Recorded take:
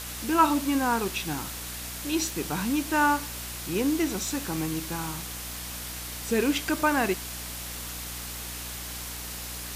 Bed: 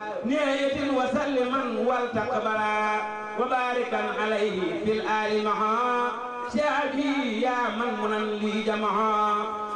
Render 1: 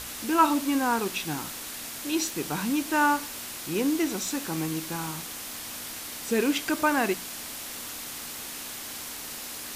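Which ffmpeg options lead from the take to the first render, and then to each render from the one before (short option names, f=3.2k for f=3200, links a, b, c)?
-af "bandreject=f=60:t=h:w=6,bandreject=f=120:t=h:w=6,bandreject=f=180:t=h:w=6"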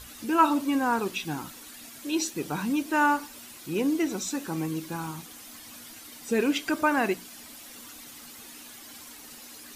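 -af "afftdn=nr=11:nf=-38"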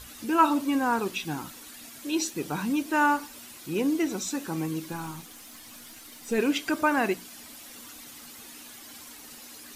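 -filter_complex "[0:a]asettb=1/sr,asplit=3[a][b][c];[a]atrim=end=4.924[d];[b]atrim=start=4.92:end=6.38,asetpts=PTS-STARTPTS,afade=t=in:d=0.004:c=qsin,afade=t=out:st=1.456:d=0.004:c=qsin,aeval=exprs='if(lt(val(0),0),0.708*val(0),val(0))':c=same[e];[c]atrim=start=6.376[f];[d][e]acrossfade=d=0.004:c1=hsin:c2=qsin[g];[g][f]acrossfade=d=0.004:c1=qsin:c2=hsin"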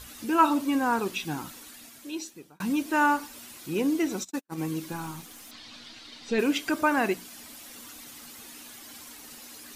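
-filter_complex "[0:a]asplit=3[a][b][c];[a]afade=t=out:st=4.23:d=0.02[d];[b]agate=range=-53dB:threshold=-31dB:ratio=16:release=100:detection=peak,afade=t=in:st=4.23:d=0.02,afade=t=out:st=4.65:d=0.02[e];[c]afade=t=in:st=4.65:d=0.02[f];[d][e][f]amix=inputs=3:normalize=0,asettb=1/sr,asplit=3[g][h][i];[g]atrim=end=5.514[j];[h]atrim=start=5.51:end=6.39,asetpts=PTS-STARTPTS,afade=t=in:d=0.004:c=qsin,afade=t=out:st=0.876:d=0.004:c=qsin,lowpass=f=4.1k:t=q:w=2.4[k];[i]atrim=start=6.386[l];[j][k]acrossfade=d=0.004:c1=hsin:c2=qsin[m];[m][l]acrossfade=d=0.004:c1=qsin:c2=hsin,asplit=2[n][o];[n]atrim=end=2.6,asetpts=PTS-STARTPTS,afade=t=out:st=1.54:d=1.06[p];[o]atrim=start=2.6,asetpts=PTS-STARTPTS,afade=t=in:d=0.004:c=hsin[q];[p][q]concat=n=2:v=0:a=1"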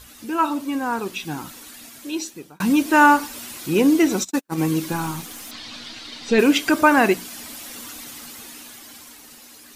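-af "dynaudnorm=f=290:g=11:m=11.5dB"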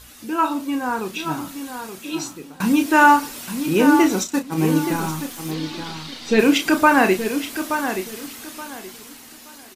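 -filter_complex "[0:a]asplit=2[a][b];[b]adelay=32,volume=-8dB[c];[a][c]amix=inputs=2:normalize=0,asplit=2[d][e];[e]adelay=875,lowpass=f=3.8k:p=1,volume=-8.5dB,asplit=2[f][g];[g]adelay=875,lowpass=f=3.8k:p=1,volume=0.25,asplit=2[h][i];[i]adelay=875,lowpass=f=3.8k:p=1,volume=0.25[j];[d][f][h][j]amix=inputs=4:normalize=0"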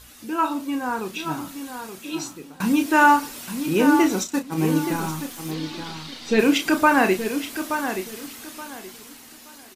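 -af "volume=-2.5dB"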